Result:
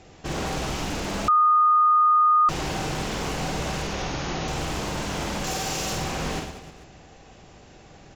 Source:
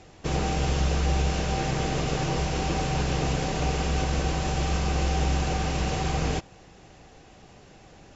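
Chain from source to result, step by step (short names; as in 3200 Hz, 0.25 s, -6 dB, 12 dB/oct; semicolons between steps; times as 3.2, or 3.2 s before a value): 5.44–5.93 tone controls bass -7 dB, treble +10 dB; wavefolder -24.5 dBFS; 3.82–4.48 brick-wall FIR low-pass 6900 Hz; reverse bouncing-ball echo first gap 50 ms, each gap 1.3×, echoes 5; 1.28–2.49 bleep 1230 Hz -14.5 dBFS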